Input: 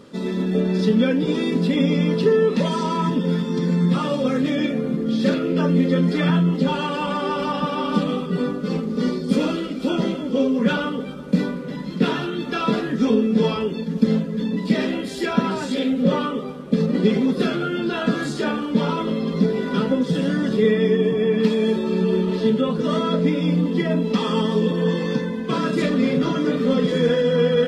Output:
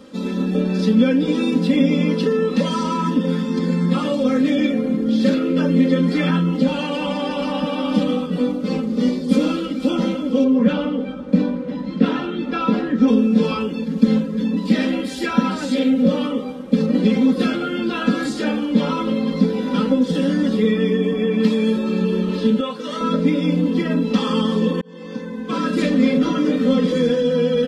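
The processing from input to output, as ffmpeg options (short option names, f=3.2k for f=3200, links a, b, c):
-filter_complex "[0:a]asettb=1/sr,asplit=3[a][b][c];[a]atrim=end=10.444[d];[b]atrim=start=10.44:end=13.08,asetpts=PTS-STARTPTS,afade=t=in:d=0.004:c=qsin,afade=t=out:st=2.636:d=0.004:c=qsin,aemphasis=mode=reproduction:type=75fm[e];[c]atrim=start=13.076[f];[d][e]acrossfade=d=0.004:c1=hsin:c2=qsin[g];[g][f]acrossfade=d=0.004:c1=qsin:c2=hsin,asettb=1/sr,asplit=3[h][i][j];[h]atrim=end=22.604[k];[i]atrim=start=22.6:end=23.01,asetpts=PTS-STARTPTS,afade=t=in:d=0.004:c=qsin,afade=t=out:st=0.406:d=0.004:c=qsin,highpass=f=970:p=1[l];[j]atrim=start=23.006[m];[k][l]acrossfade=d=0.004:c1=hsin:c2=qsin[n];[n][m]acrossfade=d=0.004:c1=qsin:c2=hsin,asplit=2[o][p];[o]atrim=end=24.81,asetpts=PTS-STARTPTS,afade=t=out:st=24.806:d=0.004:c=hsin[q];[p]atrim=start=24.81,asetpts=PTS-STARTPTS,afade=t=in:d=0.99[r];[q][r]concat=n=2:v=0:a=1,aecho=1:1:3.8:0.77,acrossover=split=340|3000[s][t][u];[t]acompressor=threshold=-20dB:ratio=6[v];[s][v][u]amix=inputs=3:normalize=0"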